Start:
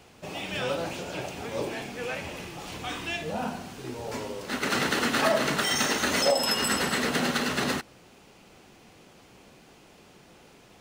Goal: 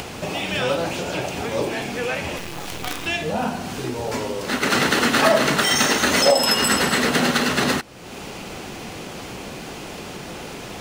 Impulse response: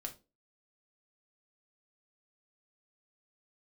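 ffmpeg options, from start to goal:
-filter_complex "[0:a]acompressor=mode=upward:threshold=-29dB:ratio=2.5,asettb=1/sr,asplit=3[a][b][c];[a]atrim=end=2.384[d];[b]atrim=start=2.38:end=3.06,asetpts=PTS-STARTPTS,afade=t=in:d=0.004:c=qsin,afade=t=out:st=0.676:d=0.004:c=qsin,acrusher=bits=5:dc=4:mix=0:aa=0.000001[e];[c]atrim=start=3.056[f];[d][e]acrossfade=d=0.004:c1=hsin:c2=qsin[g];[g][f]acrossfade=d=0.004:c1=qsin:c2=hsin,volume=7.5dB"

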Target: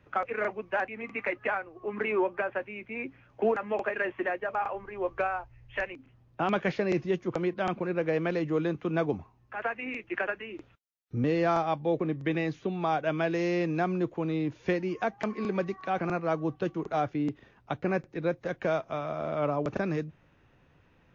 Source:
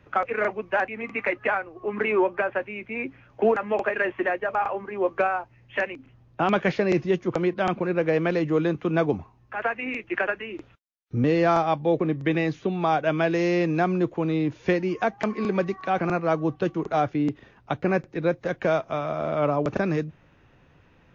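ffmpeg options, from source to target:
-filter_complex "[0:a]asplit=3[a][b][c];[a]afade=t=out:st=4.73:d=0.02[d];[b]asubboost=boost=11.5:cutoff=65,afade=t=in:st=4.73:d=0.02,afade=t=out:st=5.9:d=0.02[e];[c]afade=t=in:st=5.9:d=0.02[f];[d][e][f]amix=inputs=3:normalize=0,volume=-5.5dB"

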